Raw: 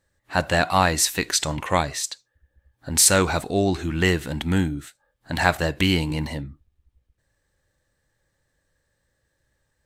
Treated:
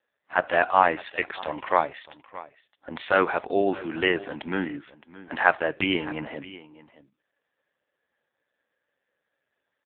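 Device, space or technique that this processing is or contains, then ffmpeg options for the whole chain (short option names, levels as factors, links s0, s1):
satellite phone: -filter_complex "[0:a]asettb=1/sr,asplit=3[s0][s1][s2];[s0]atrim=end=1.794[s3];[s1]atrim=start=1.79:end=3.05,asetpts=PTS-STARTPTS,afade=t=in:d=0.004:c=qsin,afade=t=out:st=1.256:d=0.004:c=qsin,bandreject=f=1600:w=9.6[s4];[s2]atrim=start=3.046[s5];[s3][s4]acrossfade=d=0.004:c1=hsin:c2=qsin[s6];[s6][s5]acrossfade=d=0.004:c1=qsin:c2=hsin,highpass=360,lowpass=3200,aecho=1:1:617:0.126,volume=1.26" -ar 8000 -c:a libopencore_amrnb -b:a 5150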